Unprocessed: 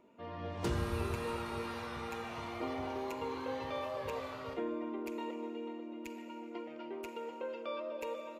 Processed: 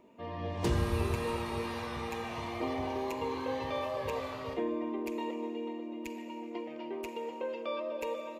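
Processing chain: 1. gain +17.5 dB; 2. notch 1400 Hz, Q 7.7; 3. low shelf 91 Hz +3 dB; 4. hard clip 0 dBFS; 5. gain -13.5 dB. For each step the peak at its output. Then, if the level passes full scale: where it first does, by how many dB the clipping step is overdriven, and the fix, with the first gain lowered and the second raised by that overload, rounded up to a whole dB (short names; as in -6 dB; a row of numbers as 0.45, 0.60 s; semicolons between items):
-6.5, -6.0, -5.0, -5.0, -18.5 dBFS; no overload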